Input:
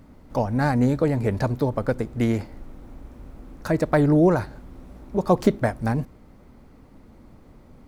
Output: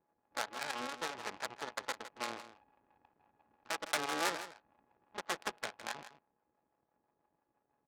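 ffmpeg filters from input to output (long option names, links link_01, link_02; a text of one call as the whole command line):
ffmpeg -i in.wav -filter_complex "[0:a]aeval=exprs='0.562*(cos(1*acos(clip(val(0)/0.562,-1,1)))-cos(1*PI/2))+0.126*(cos(6*acos(clip(val(0)/0.562,-1,1)))-cos(6*PI/2))':channel_layout=same,aeval=exprs='val(0)*sin(2*PI*420*n/s)':channel_layout=same,aresample=11025,aeval=exprs='abs(val(0))':channel_layout=same,aresample=44100,acrossover=split=480[link_01][link_02];[link_01]aeval=exprs='val(0)*(1-0.5/2+0.5/2*cos(2*PI*6*n/s))':channel_layout=same[link_03];[link_02]aeval=exprs='val(0)*(1-0.5/2-0.5/2*cos(2*PI*6*n/s))':channel_layout=same[link_04];[link_03][link_04]amix=inputs=2:normalize=0,adynamicsmooth=sensitivity=2:basefreq=580,aderivative,asplit=2[link_05][link_06];[link_06]aecho=0:1:160:0.224[link_07];[link_05][link_07]amix=inputs=2:normalize=0,volume=5.5dB" out.wav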